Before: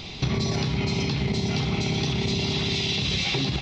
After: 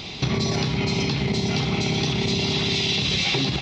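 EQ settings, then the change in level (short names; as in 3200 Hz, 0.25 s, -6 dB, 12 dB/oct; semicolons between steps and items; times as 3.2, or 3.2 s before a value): low shelf 68 Hz -11.5 dB; +3.5 dB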